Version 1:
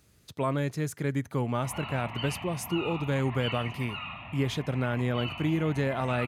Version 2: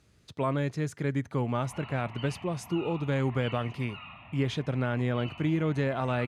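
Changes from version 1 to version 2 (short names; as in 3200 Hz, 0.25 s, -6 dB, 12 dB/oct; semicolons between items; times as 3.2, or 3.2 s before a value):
background -6.5 dB; master: add air absorption 58 m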